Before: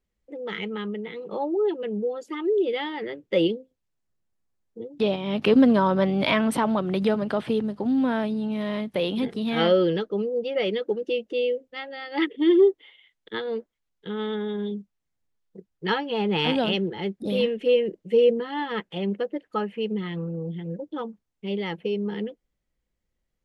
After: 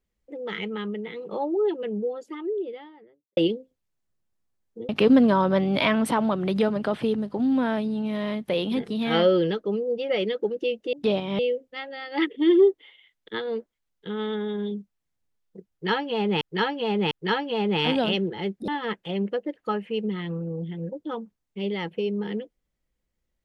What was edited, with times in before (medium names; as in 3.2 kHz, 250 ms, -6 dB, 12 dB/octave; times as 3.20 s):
1.72–3.37 s: studio fade out
4.89–5.35 s: move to 11.39 s
15.71–16.41 s: loop, 3 plays
17.28–18.55 s: delete